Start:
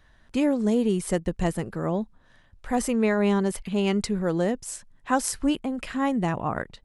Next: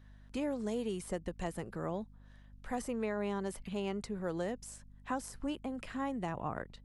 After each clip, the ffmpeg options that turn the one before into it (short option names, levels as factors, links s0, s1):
-filter_complex "[0:a]acrossover=split=430|1300[s0][s1][s2];[s0]acompressor=threshold=0.0251:ratio=4[s3];[s1]acompressor=threshold=0.0355:ratio=4[s4];[s2]acompressor=threshold=0.01:ratio=4[s5];[s3][s4][s5]amix=inputs=3:normalize=0,aeval=exprs='val(0)+0.00398*(sin(2*PI*50*n/s)+sin(2*PI*2*50*n/s)/2+sin(2*PI*3*50*n/s)/3+sin(2*PI*4*50*n/s)/4+sin(2*PI*5*50*n/s)/5)':c=same,volume=0.422"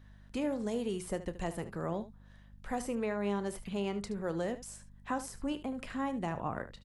-af "aecho=1:1:30|74:0.178|0.2,volume=1.19"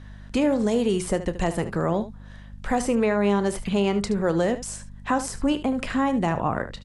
-filter_complex "[0:a]lowpass=f=10000:w=0.5412,lowpass=f=10000:w=1.3066,asplit=2[s0][s1];[s1]alimiter=level_in=1.78:limit=0.0631:level=0:latency=1:release=156,volume=0.562,volume=0.944[s2];[s0][s2]amix=inputs=2:normalize=0,volume=2.51"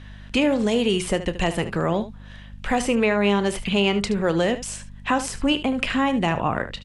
-af "equalizer=f=2800:t=o:w=0.95:g=10,volume=1.12"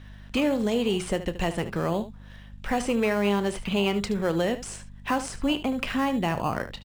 -filter_complex "[0:a]aresample=22050,aresample=44100,asplit=2[s0][s1];[s1]acrusher=samples=12:mix=1:aa=0.000001,volume=0.282[s2];[s0][s2]amix=inputs=2:normalize=0,volume=0.501"